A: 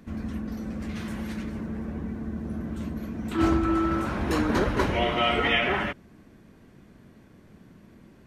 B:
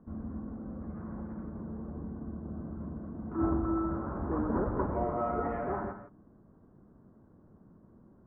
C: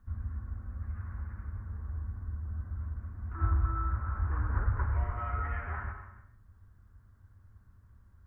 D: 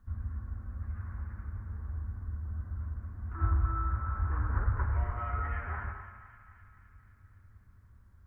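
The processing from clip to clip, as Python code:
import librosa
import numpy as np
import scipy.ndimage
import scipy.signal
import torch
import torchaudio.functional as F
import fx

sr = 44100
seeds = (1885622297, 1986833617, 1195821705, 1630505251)

y1 = scipy.signal.sosfilt(scipy.signal.butter(6, 1300.0, 'lowpass', fs=sr, output='sos'), x)
y1 = fx.echo_multitap(y1, sr, ms=(123, 158, 168), db=(-13.5, -15.0, -17.0))
y1 = y1 * 10.0 ** (-6.5 / 20.0)
y2 = fx.curve_eq(y1, sr, hz=(100.0, 150.0, 320.0, 640.0, 1700.0), db=(0, -22, -28, -25, -2))
y2 = fx.rev_gated(y2, sr, seeds[0], gate_ms=330, shape='flat', drr_db=9.0)
y2 = y2 * 10.0 ** (9.0 / 20.0)
y3 = fx.echo_thinned(y2, sr, ms=258, feedback_pct=71, hz=810.0, wet_db=-12)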